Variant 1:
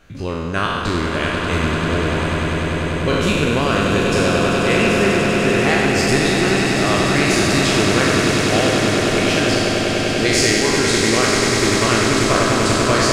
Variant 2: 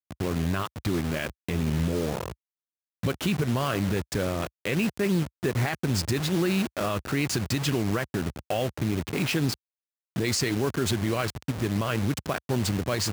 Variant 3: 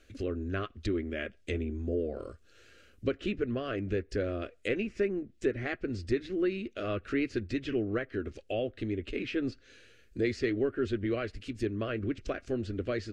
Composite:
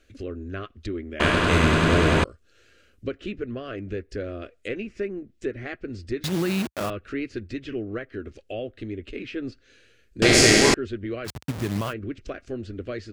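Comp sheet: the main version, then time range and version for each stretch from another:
3
1.20–2.24 s: from 1
6.24–6.90 s: from 2
10.22–10.74 s: from 1
11.27–11.91 s: from 2, crossfade 0.06 s

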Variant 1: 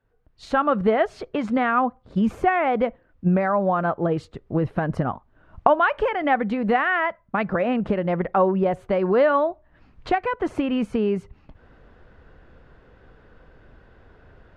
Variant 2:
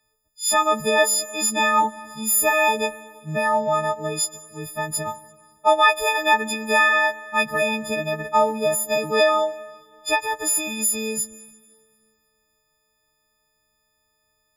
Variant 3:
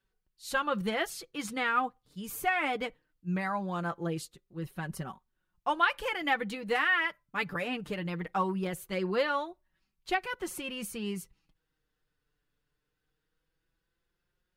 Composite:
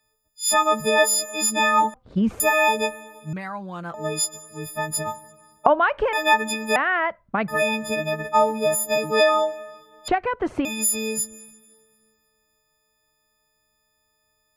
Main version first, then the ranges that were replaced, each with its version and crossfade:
2
1.94–2.40 s: from 1
3.33–3.94 s: from 3
5.66–6.13 s: from 1
6.76–7.48 s: from 1
10.08–10.65 s: from 1

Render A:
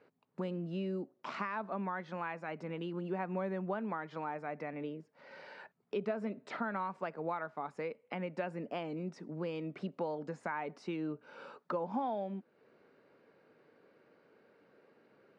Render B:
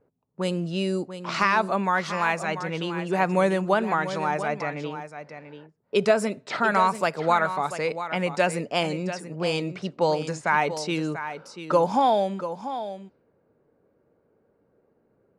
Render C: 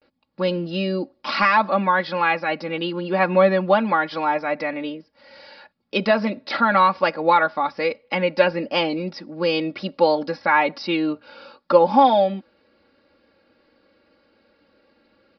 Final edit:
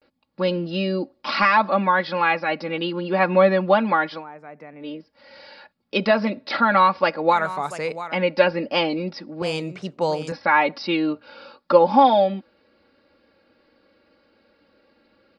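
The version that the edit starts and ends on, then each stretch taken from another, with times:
C
4.16–4.87 s: from A, crossfade 0.16 s
7.34–8.13 s: from B, crossfade 0.10 s
9.42–10.32 s: from B

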